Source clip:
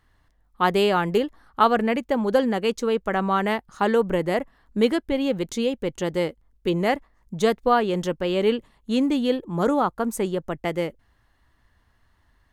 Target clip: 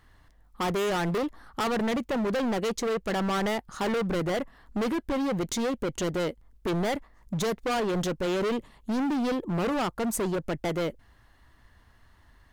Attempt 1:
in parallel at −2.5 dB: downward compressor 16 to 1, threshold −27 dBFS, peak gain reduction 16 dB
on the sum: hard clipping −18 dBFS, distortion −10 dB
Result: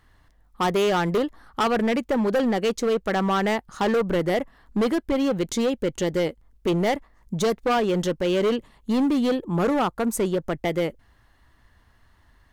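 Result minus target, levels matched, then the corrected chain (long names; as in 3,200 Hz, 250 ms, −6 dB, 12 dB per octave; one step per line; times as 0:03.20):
hard clipping: distortion −5 dB
in parallel at −2.5 dB: downward compressor 16 to 1, threshold −27 dBFS, peak gain reduction 16 dB
on the sum: hard clipping −25.5 dBFS, distortion −5 dB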